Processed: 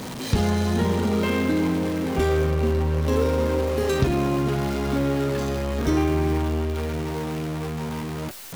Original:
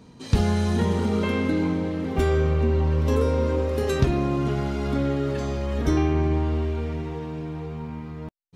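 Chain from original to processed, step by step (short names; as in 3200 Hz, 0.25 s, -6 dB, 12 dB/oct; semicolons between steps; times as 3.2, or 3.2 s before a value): zero-crossing step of -28 dBFS; low shelf 68 Hz -7.5 dB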